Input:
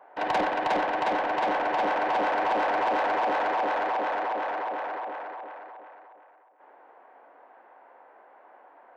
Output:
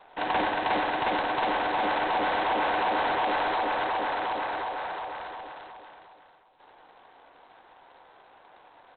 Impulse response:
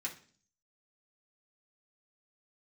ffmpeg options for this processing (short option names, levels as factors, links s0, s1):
-filter_complex "[0:a]asettb=1/sr,asplit=3[s0][s1][s2];[s0]atrim=end=4.654[s3];[s1]atrim=start=4.65:end=5.3,asetpts=PTS-STARTPTS,afade=t=in:d=0.004:c=qsin,afade=t=out:st=0.646:d=0.004:c=qsin,highpass=370[s4];[s2]atrim=start=5.296[s5];[s3][s4]acrossfade=d=0.004:c1=hsin:c2=qsin[s6];[s6][s5]acrossfade=d=0.004:c1=qsin:c2=hsin,equalizer=f=590:t=o:w=0.53:g=-4,aecho=1:1:93:0.188" -ar 8000 -c:a adpcm_g726 -b:a 16k